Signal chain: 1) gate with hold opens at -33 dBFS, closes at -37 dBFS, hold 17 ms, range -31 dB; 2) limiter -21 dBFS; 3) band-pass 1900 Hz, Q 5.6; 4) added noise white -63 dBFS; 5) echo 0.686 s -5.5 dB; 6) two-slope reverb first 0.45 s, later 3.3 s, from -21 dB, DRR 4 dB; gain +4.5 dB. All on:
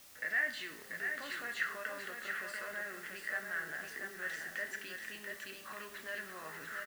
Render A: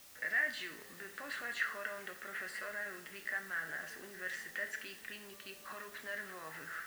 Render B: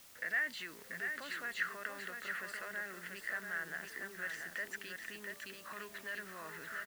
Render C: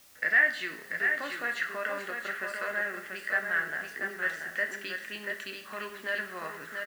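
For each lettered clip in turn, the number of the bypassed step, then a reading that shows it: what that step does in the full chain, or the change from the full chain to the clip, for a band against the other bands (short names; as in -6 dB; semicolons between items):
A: 5, echo-to-direct -1.0 dB to -4.0 dB; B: 6, loudness change -1.5 LU; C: 2, mean gain reduction 5.5 dB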